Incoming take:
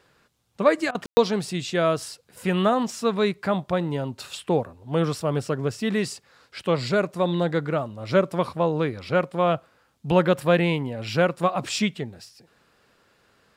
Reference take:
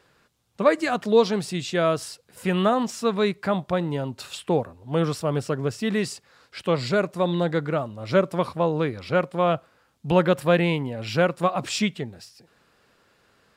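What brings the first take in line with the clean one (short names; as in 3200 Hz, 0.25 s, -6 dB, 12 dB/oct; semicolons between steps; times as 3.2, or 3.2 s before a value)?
room tone fill 1.06–1.17; interpolate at 0.91, 38 ms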